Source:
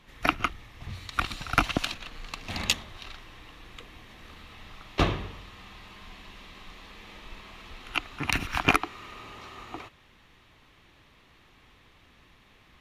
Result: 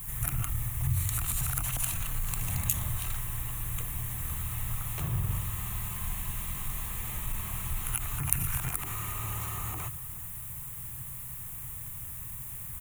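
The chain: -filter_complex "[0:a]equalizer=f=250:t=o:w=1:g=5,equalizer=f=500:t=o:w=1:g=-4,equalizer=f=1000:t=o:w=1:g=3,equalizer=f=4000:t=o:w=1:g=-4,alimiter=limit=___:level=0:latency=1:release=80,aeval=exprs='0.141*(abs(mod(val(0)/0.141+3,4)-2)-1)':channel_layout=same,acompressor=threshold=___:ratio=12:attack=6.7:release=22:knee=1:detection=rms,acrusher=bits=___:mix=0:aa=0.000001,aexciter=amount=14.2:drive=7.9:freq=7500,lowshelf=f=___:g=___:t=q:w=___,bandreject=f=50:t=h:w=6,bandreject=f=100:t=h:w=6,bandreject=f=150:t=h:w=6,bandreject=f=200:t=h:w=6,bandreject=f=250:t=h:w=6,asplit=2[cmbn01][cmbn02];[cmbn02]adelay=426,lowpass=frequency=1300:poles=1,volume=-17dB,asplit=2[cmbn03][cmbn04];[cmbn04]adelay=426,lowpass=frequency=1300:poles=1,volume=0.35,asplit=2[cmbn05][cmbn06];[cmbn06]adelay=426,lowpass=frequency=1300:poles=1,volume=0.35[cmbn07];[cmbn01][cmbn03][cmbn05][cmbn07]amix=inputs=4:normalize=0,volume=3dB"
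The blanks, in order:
-13dB, -42dB, 10, 180, 11, 3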